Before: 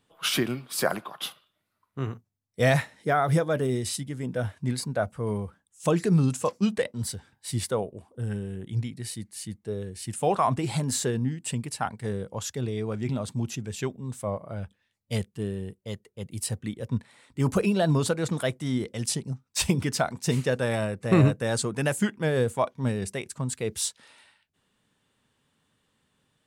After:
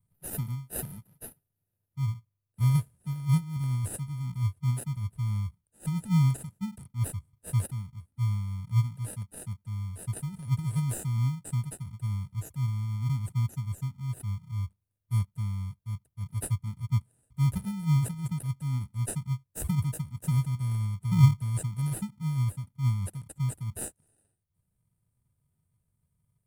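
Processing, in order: inverse Chebyshev band-stop 410–3800 Hz, stop band 60 dB; bell 720 Hz +10 dB 2.9 oct; in parallel at -4 dB: sample-and-hold 40×

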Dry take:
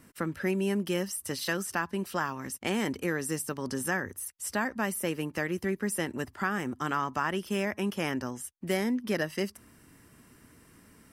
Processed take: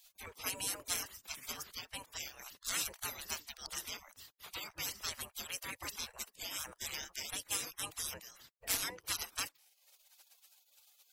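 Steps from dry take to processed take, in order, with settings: reverb removal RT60 0.84 s; spectral gate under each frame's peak -30 dB weak; gain +12.5 dB

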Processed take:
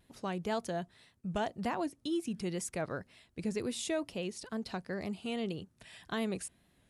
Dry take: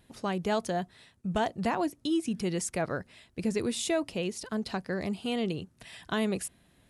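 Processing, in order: wow and flutter 56 cents; gain -5.5 dB

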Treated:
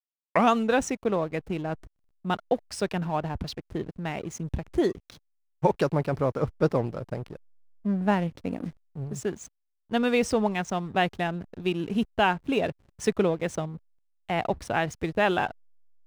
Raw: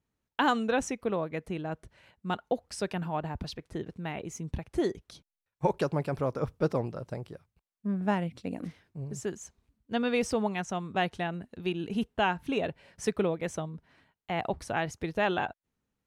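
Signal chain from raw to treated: tape start at the beginning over 0.55 s; backlash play -43.5 dBFS; gain +4.5 dB

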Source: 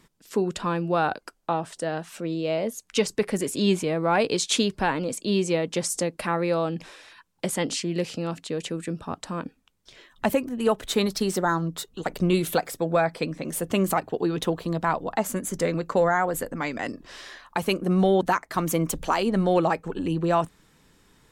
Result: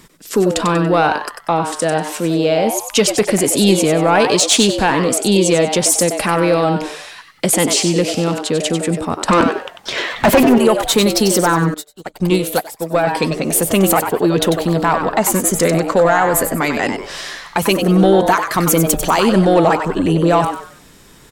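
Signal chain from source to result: 9.28–10.58 overdrive pedal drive 30 dB, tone 1200 Hz, clips at -10.5 dBFS; in parallel at -2 dB: limiter -20.5 dBFS, peak gain reduction 10 dB; on the sum: high shelf 6200 Hz +6 dB; soft clip -10.5 dBFS, distortion -21 dB; on a send: frequency-shifting echo 95 ms, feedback 33%, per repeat +140 Hz, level -7.5 dB; 11.74–13.07 on the sum: upward expander 2.5:1, over -40 dBFS; gain +7.5 dB

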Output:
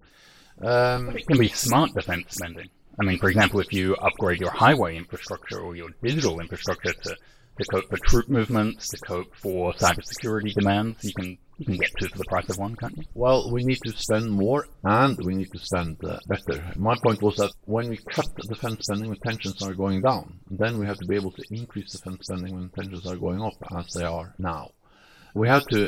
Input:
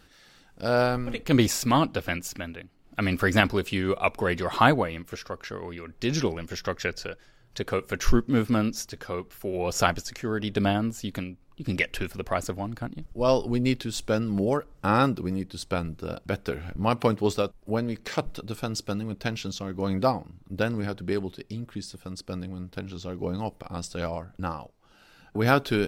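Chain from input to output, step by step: spectral delay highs late, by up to 0.105 s; gain +3 dB

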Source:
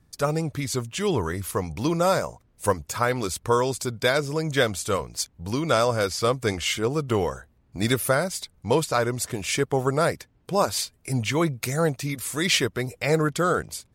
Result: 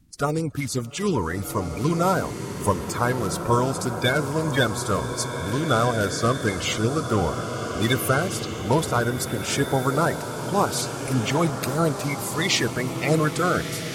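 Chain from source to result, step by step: bin magnitudes rounded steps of 30 dB; low shelf 170 Hz +5 dB; bloom reverb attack 1.77 s, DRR 5.5 dB

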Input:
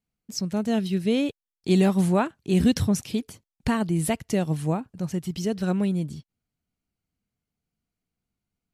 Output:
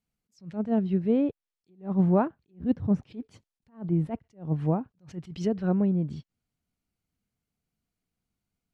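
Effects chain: treble ducked by the level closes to 1000 Hz, closed at -21 dBFS; attack slew limiter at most 230 dB/s

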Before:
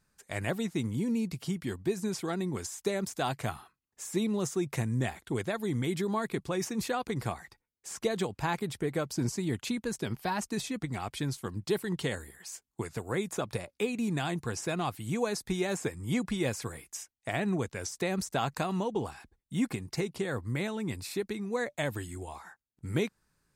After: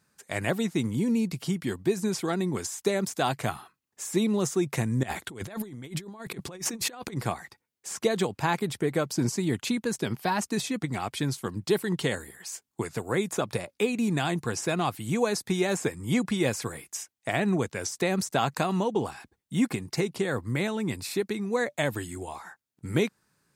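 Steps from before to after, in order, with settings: HPF 110 Hz 12 dB/oct; 5.03–7.17 negative-ratio compressor -39 dBFS, ratio -0.5; gain +5 dB

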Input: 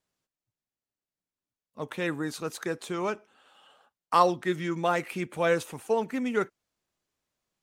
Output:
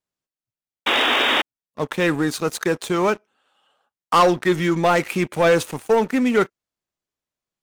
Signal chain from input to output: painted sound noise, 0.86–1.42, 220–3800 Hz -29 dBFS; sample leveller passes 3

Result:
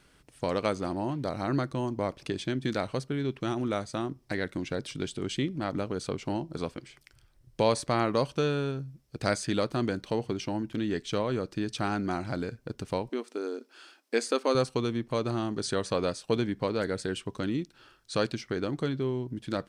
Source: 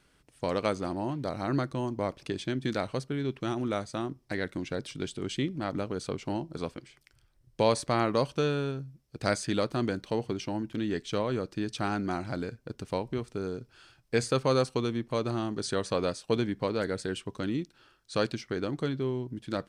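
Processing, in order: in parallel at -1.5 dB: compressor, threshold -40 dBFS, peak gain reduction 19.5 dB; 13.09–14.55 on the sum: brick-wall FIR high-pass 220 Hz; gain -1 dB

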